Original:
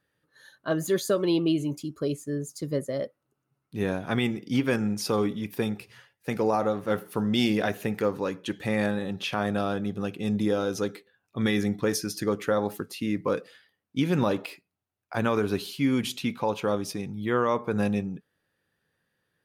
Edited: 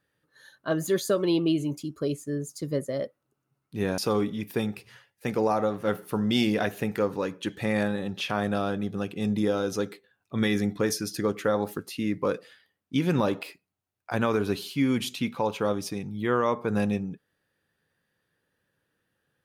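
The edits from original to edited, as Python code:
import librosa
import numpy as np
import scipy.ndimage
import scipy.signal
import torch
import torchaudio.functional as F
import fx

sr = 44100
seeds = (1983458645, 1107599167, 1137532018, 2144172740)

y = fx.edit(x, sr, fx.cut(start_s=3.98, length_s=1.03), tone=tone)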